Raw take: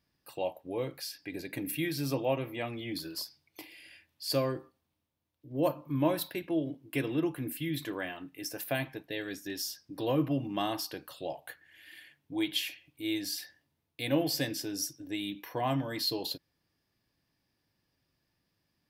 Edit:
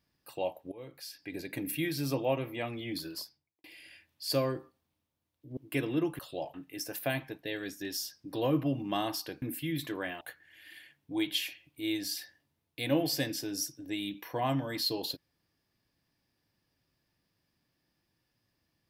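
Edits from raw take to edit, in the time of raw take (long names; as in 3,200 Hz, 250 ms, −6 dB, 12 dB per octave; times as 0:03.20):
0:00.72–0:01.38: fade in, from −18.5 dB
0:03.08–0:03.64: fade out and dull
0:05.57–0:06.78: remove
0:07.40–0:08.19: swap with 0:11.07–0:11.42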